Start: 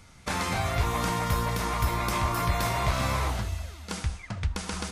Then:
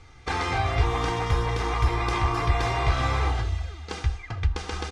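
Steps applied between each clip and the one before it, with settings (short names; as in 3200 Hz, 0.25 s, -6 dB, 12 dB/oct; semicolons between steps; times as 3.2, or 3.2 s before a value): air absorption 110 m; comb 2.5 ms, depth 75%; gain +1.5 dB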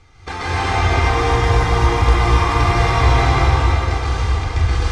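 plate-style reverb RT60 4.6 s, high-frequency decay 0.8×, pre-delay 0.12 s, DRR -9 dB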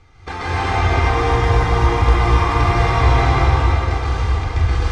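high shelf 3900 Hz -6.5 dB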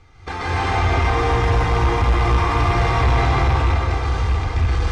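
rattling part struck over -12 dBFS, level -19 dBFS; soft clip -10 dBFS, distortion -16 dB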